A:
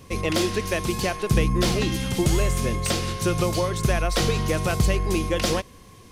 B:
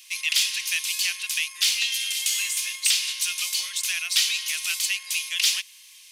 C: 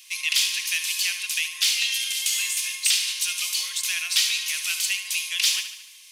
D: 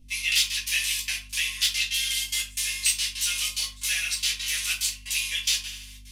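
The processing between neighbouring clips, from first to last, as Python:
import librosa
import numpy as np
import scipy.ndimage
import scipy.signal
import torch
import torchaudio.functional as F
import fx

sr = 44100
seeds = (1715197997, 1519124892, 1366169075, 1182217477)

y1 = scipy.signal.sosfilt(scipy.signal.cheby1(3, 1.0, 2600.0, 'highpass', fs=sr, output='sos'), x)
y1 = F.gain(torch.from_numpy(y1), 8.5).numpy()
y2 = fx.echo_feedback(y1, sr, ms=73, feedback_pct=54, wet_db=-10.0)
y3 = fx.step_gate(y2, sr, bpm=181, pattern='.xxxx.x.xxxx.x.', floor_db=-24.0, edge_ms=4.5)
y3 = fx.add_hum(y3, sr, base_hz=50, snr_db=25)
y3 = fx.room_shoebox(y3, sr, seeds[0], volume_m3=170.0, walls='furnished', distance_m=2.5)
y3 = F.gain(torch.from_numpy(y3), -4.5).numpy()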